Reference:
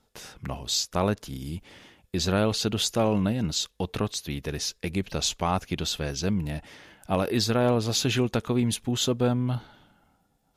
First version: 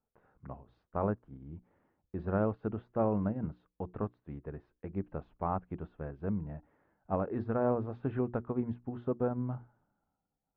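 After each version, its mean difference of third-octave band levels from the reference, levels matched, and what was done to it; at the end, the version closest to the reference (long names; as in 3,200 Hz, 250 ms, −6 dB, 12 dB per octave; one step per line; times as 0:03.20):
11.5 dB: low-pass filter 1,400 Hz 24 dB per octave
mains-hum notches 60/120/180/240/300/360 Hz
expander for the loud parts 1.5 to 1, over −46 dBFS
level −5 dB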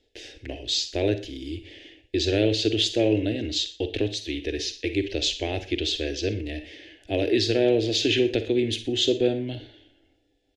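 8.0 dB: drawn EQ curve 110 Hz 0 dB, 160 Hz −29 dB, 310 Hz +10 dB, 450 Hz +4 dB, 670 Hz −2 dB, 1,200 Hz −30 dB, 1,700 Hz +1 dB, 3,100 Hz +7 dB, 7,500 Hz −7 dB, 12,000 Hz −22 dB
on a send: single-tap delay 120 ms −22.5 dB
on the sum: four-comb reverb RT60 0.32 s, DRR 10 dB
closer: second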